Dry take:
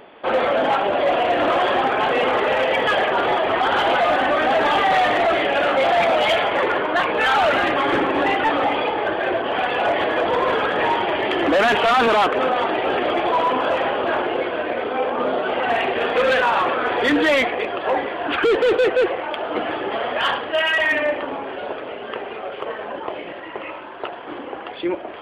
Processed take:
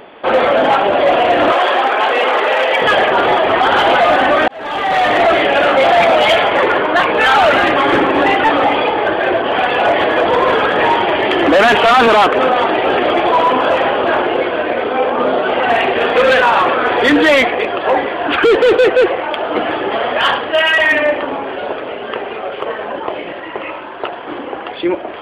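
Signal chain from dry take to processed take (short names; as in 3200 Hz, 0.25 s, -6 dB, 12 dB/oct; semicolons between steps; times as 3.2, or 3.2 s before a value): 1.52–2.82 Bessel high-pass 480 Hz, order 2; 4.48–5.21 fade in; gain +7 dB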